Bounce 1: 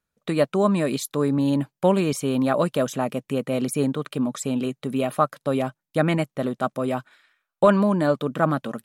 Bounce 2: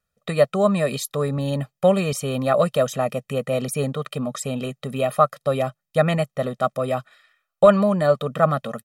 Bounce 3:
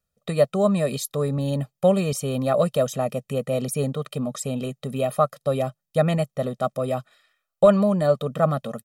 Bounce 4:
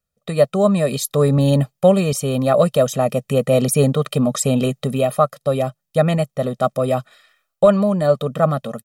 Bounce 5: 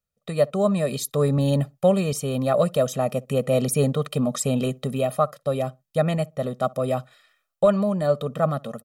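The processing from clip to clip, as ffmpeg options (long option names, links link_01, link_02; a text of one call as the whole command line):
ffmpeg -i in.wav -af "aecho=1:1:1.6:0.77" out.wav
ffmpeg -i in.wav -af "equalizer=frequency=1700:width=0.7:gain=-7" out.wav
ffmpeg -i in.wav -af "dynaudnorm=framelen=200:gausssize=3:maxgain=11.5dB,volume=-1dB" out.wav
ffmpeg -i in.wav -filter_complex "[0:a]asplit=2[link_01][link_02];[link_02]adelay=62,lowpass=frequency=1000:poles=1,volume=-23dB,asplit=2[link_03][link_04];[link_04]adelay=62,lowpass=frequency=1000:poles=1,volume=0.21[link_05];[link_01][link_03][link_05]amix=inputs=3:normalize=0,volume=-5.5dB" out.wav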